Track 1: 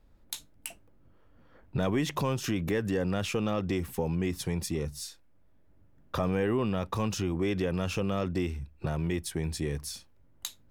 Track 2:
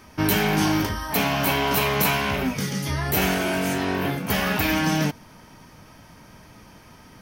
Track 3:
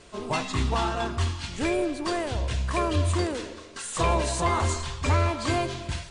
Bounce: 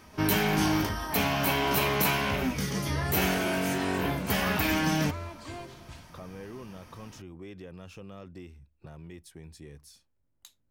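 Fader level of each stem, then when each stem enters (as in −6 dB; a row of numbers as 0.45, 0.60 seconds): −15.0, −4.5, −15.5 decibels; 0.00, 0.00, 0.00 seconds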